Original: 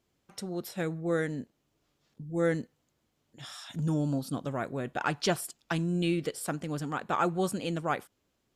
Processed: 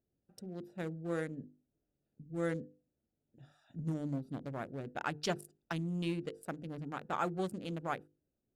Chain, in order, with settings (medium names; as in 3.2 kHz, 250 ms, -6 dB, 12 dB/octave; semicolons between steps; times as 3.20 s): local Wiener filter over 41 samples; treble shelf 11 kHz +6.5 dB; hum notches 50/100/150/200/250/300/350/400/450/500 Hz; trim -6 dB